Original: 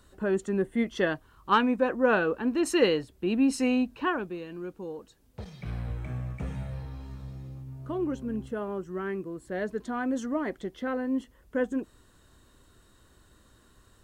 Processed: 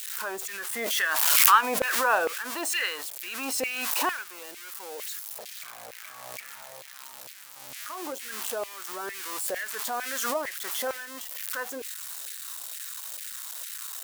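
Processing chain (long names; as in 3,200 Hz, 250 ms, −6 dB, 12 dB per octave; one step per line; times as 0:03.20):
spike at every zero crossing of −27.5 dBFS
auto-filter high-pass saw down 2.2 Hz 530–2,300 Hz
background raised ahead of every attack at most 28 dB per second
level −1.5 dB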